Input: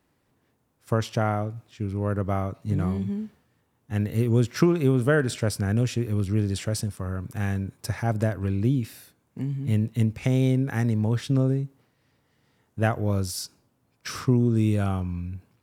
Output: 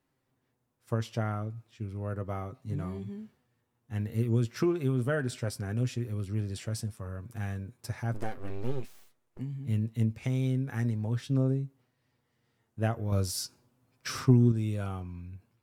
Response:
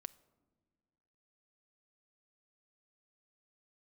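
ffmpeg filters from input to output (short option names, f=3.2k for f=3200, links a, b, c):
-filter_complex "[0:a]asettb=1/sr,asplit=3[a][b][c];[a]atrim=end=8.144[d];[b]atrim=start=8.14:end=9.39,asetpts=PTS-STARTPTS,afade=t=in:d=0.004:c=qsin,afade=t=out:st=1.246:d=0.004:c=qsin,aeval=exprs='abs(val(0))':c=same[e];[c]atrim=start=9.386[f];[d][e]acrossfade=d=0.004:c1=hsin:c2=qsin[g];[g][f]acrossfade=d=0.004:c1=qsin:c2=hsin,flanger=delay=7.5:depth=1.4:regen=42:speed=0.35:shape=triangular,asettb=1/sr,asplit=3[h][i][j];[h]atrim=end=13.124[k];[i]atrim=start=13.12:end=14.52,asetpts=PTS-STARTPTS,afade=t=in:d=0.004:c=qsin,afade=t=out:st=1.396:d=0.004:c=qsin,acontrast=63[l];[j]atrim=start=14.516[m];[k][l]acrossfade=d=0.004:c1=hsin:c2=qsin[n];[n][m]acrossfade=d=0.004:c1=qsin:c2=hsin,volume=-4.5dB"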